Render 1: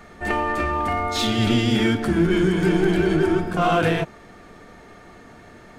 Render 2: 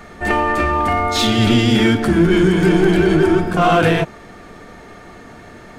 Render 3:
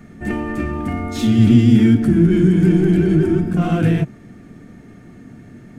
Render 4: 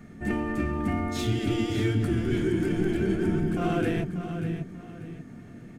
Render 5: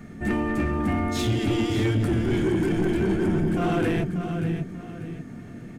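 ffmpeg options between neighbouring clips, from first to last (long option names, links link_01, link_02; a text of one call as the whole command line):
ffmpeg -i in.wav -af "acontrast=63" out.wav
ffmpeg -i in.wav -af "equalizer=frequency=125:width_type=o:width=1:gain=11,equalizer=frequency=250:width_type=o:width=1:gain=10,equalizer=frequency=500:width_type=o:width=1:gain=-4,equalizer=frequency=1000:width_type=o:width=1:gain=-9,equalizer=frequency=4000:width_type=o:width=1:gain=-7,volume=-7dB" out.wav
ffmpeg -i in.wav -af "aecho=1:1:588|1176|1764:0.316|0.098|0.0304,afftfilt=real='re*lt(hypot(re,im),1.58)':imag='im*lt(hypot(re,im),1.58)':win_size=1024:overlap=0.75,volume=-5.5dB" out.wav
ffmpeg -i in.wav -af "asoftclip=type=tanh:threshold=-21.5dB,volume=5dB" out.wav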